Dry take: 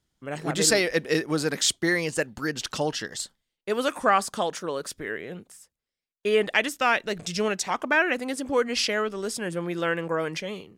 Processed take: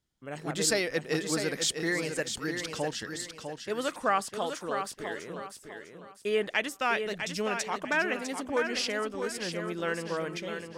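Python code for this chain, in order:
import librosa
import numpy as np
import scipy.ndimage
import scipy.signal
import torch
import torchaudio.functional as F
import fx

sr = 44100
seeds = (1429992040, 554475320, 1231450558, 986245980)

y = fx.echo_feedback(x, sr, ms=651, feedback_pct=33, wet_db=-7.0)
y = y * 10.0 ** (-6.0 / 20.0)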